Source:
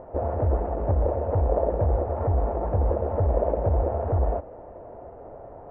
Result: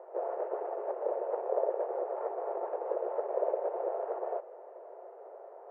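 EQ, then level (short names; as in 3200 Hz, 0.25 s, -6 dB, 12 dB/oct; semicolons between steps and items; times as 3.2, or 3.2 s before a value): Chebyshev high-pass 370 Hz, order 6; air absorption 68 m; -5.0 dB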